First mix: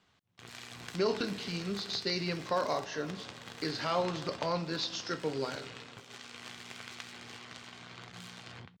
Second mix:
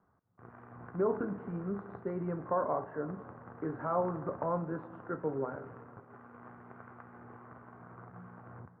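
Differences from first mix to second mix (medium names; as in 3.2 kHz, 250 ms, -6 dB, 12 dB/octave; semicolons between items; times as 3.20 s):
background: send on; master: add steep low-pass 1.4 kHz 36 dB/octave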